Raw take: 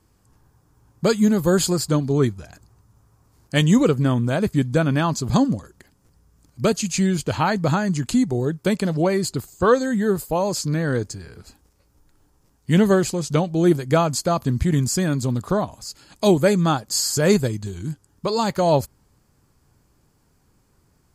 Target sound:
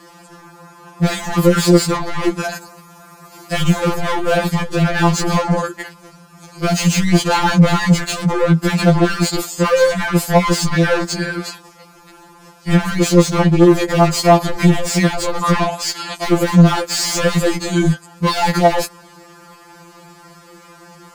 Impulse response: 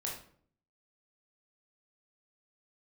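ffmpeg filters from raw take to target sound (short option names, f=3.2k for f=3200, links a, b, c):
-filter_complex "[0:a]asettb=1/sr,asplit=3[a][b][c];[a]atrim=end=2.394[d];[b]atrim=start=2.39:end=4.48,asetpts=PTS-STARTPTS,afade=t=in:d=0.004:c=qsin,afade=t=out:st=2.086:d=0.004:c=qsin,highshelf=f=11k:g=12[e];[c]atrim=start=4.476[f];[d][e]acrossfade=d=0.004:c1=hsin:c2=qsin[g];[g][f]acrossfade=d=0.004:c1=qsin:c2=hsin,asplit=2[h][i];[i]highpass=f=720:p=1,volume=37dB,asoftclip=type=tanh:threshold=-4dB[j];[h][j]amix=inputs=2:normalize=0,lowpass=f=2.2k:p=1,volume=-6dB,alimiter=level_in=8.5dB:limit=-1dB:release=50:level=0:latency=1,afftfilt=real='re*2.83*eq(mod(b,8),0)':imag='im*2.83*eq(mod(b,8),0)':win_size=2048:overlap=0.75,volume=-7.5dB"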